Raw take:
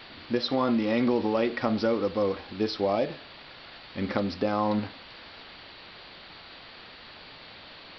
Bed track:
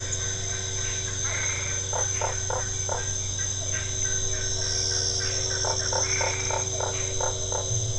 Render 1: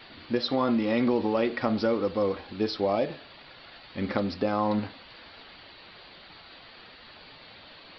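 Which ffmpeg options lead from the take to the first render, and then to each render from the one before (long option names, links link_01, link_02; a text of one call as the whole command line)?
ffmpeg -i in.wav -af "afftdn=noise_reduction=6:noise_floor=-48" out.wav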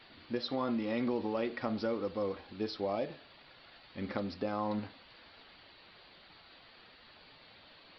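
ffmpeg -i in.wav -af "volume=-8.5dB" out.wav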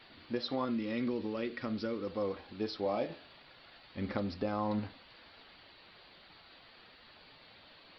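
ffmpeg -i in.wav -filter_complex "[0:a]asettb=1/sr,asplit=3[link_01][link_02][link_03];[link_01]atrim=end=0.654[link_04];[link_02]atrim=start=0.65:end=2.07,asetpts=PTS-STARTPTS,afade=type=in:duration=0.004:curve=qsin,afade=type=out:start_time=1.416:duration=0.004:curve=qsin,equalizer=frequency=780:width_type=o:width=0.87:gain=-11[link_05];[link_03]atrim=start=2.066[link_06];[link_04][link_05]acrossfade=duration=0.004:curve1=hsin:curve2=qsin[link_07];[link_07][link_06]acrossfade=duration=0.004:curve1=qsin:curve2=hsin,asettb=1/sr,asplit=3[link_08][link_09][link_10];[link_08]atrim=end=2.834[link_11];[link_09]atrim=start=2.83:end=3.39,asetpts=PTS-STARTPTS,afade=type=in:duration=0.004:curve=qsin,afade=type=out:start_time=0.556:duration=0.004:curve=qsin,asplit=2[link_12][link_13];[link_13]adelay=24,volume=-6dB[link_14];[link_12][link_14]amix=inputs=2:normalize=0,atrim=end_sample=24696[link_15];[link_10]atrim=start=3.386[link_16];[link_11][link_15]acrossfade=duration=0.004:curve1=hsin:curve2=qsin[link_17];[link_17][link_16]acrossfade=duration=0.004:curve1=qsin:curve2=hsin,asettb=1/sr,asplit=3[link_18][link_19][link_20];[link_18]atrim=end=3.974[link_21];[link_19]atrim=start=3.97:end=4.98,asetpts=PTS-STARTPTS,afade=type=in:duration=0.004:curve=qsin,afade=type=out:start_time=1.006:duration=0.004:curve=qsin,lowshelf=frequency=100:gain=9.5[link_22];[link_20]atrim=start=4.976[link_23];[link_21][link_22]acrossfade=duration=0.004:curve1=hsin:curve2=qsin[link_24];[link_24][link_23]acrossfade=duration=0.004:curve1=qsin:curve2=hsin" out.wav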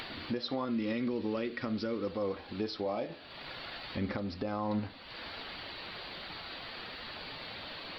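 ffmpeg -i in.wav -filter_complex "[0:a]asplit=2[link_01][link_02];[link_02]acompressor=mode=upward:threshold=-37dB:ratio=2.5,volume=2dB[link_03];[link_01][link_03]amix=inputs=2:normalize=0,alimiter=limit=-24dB:level=0:latency=1:release=474" out.wav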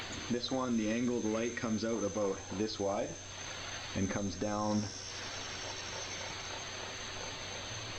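ffmpeg -i in.wav -i bed.wav -filter_complex "[1:a]volume=-19.5dB[link_01];[0:a][link_01]amix=inputs=2:normalize=0" out.wav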